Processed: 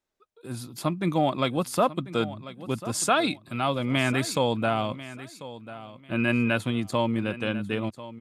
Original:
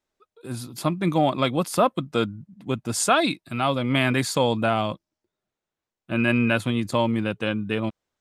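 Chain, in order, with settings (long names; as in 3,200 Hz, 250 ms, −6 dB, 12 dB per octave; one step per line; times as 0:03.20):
repeating echo 1,043 ms, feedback 24%, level −15.5 dB
level −3 dB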